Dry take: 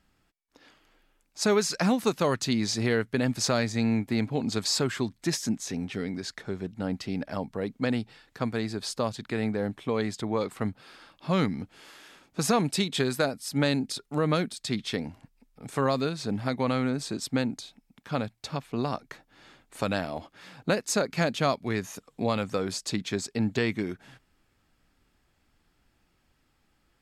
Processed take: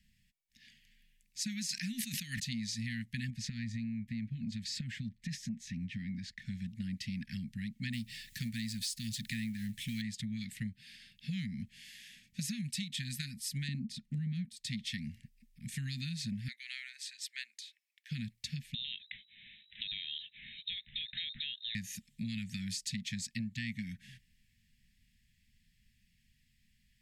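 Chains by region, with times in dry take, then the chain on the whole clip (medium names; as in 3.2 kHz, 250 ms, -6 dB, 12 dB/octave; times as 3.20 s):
1.69–2.40 s: Bessel high-pass 250 Hz + level flattener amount 100%
3.30–6.42 s: low-pass 1.5 kHz 6 dB/octave + compression 5:1, threshold -27 dBFS
7.93–10.02 s: companding laws mixed up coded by mu + treble shelf 5 kHz +10.5 dB
13.68–14.45 s: low-pass 3.3 kHz 6 dB/octave + peaking EQ 210 Hz +14.5 dB 1.2 oct
16.48–18.11 s: high-pass 1.2 kHz 24 dB/octave + treble shelf 3.4 kHz -7.5 dB
18.74–21.75 s: compression 4:1, threshold -35 dBFS + frequency inversion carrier 3.9 kHz
whole clip: Chebyshev band-stop 230–1800 Hz, order 5; compression 10:1, threshold -35 dBFS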